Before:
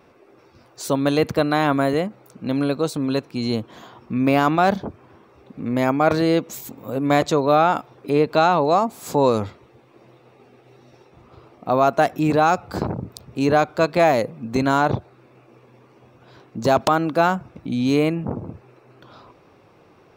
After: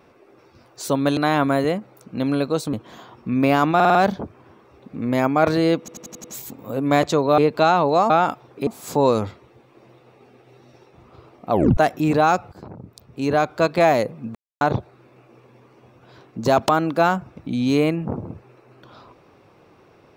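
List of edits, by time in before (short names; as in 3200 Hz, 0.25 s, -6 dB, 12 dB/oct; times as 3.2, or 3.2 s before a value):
1.17–1.46 cut
3.02–3.57 cut
4.59 stutter 0.05 s, 5 plays
6.43 stutter 0.09 s, 6 plays
7.57–8.14 move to 8.86
11.7 tape stop 0.26 s
12.71–13.8 fade in, from -22.5 dB
14.54–14.8 mute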